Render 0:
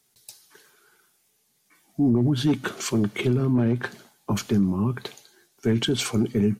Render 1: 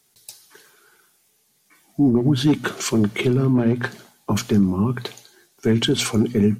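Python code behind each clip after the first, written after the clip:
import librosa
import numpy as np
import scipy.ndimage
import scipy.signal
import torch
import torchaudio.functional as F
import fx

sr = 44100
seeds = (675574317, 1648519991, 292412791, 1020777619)

y = fx.hum_notches(x, sr, base_hz=60, count=4)
y = F.gain(torch.from_numpy(y), 4.5).numpy()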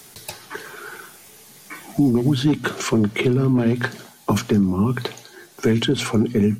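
y = fx.band_squash(x, sr, depth_pct=70)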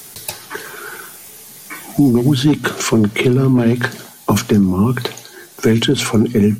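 y = fx.high_shelf(x, sr, hz=7700.0, db=7.0)
y = F.gain(torch.from_numpy(y), 5.0).numpy()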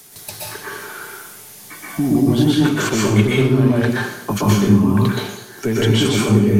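y = fx.rev_plate(x, sr, seeds[0], rt60_s=0.79, hf_ratio=0.8, predelay_ms=110, drr_db=-5.5)
y = F.gain(torch.from_numpy(y), -7.5).numpy()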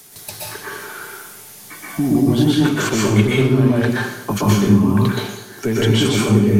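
y = fx.echo_feedback(x, sr, ms=169, feedback_pct=55, wet_db=-23.5)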